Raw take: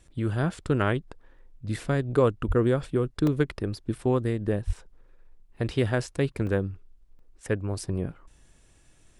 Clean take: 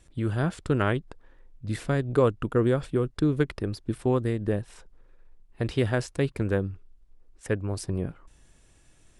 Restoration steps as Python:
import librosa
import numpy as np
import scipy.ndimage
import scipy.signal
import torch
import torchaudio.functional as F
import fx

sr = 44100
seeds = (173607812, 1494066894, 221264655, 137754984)

y = fx.fix_deplosive(x, sr, at_s=(2.47, 4.66))
y = fx.fix_interpolate(y, sr, at_s=(3.27, 4.76, 5.57, 6.47, 7.19), length_ms=2.6)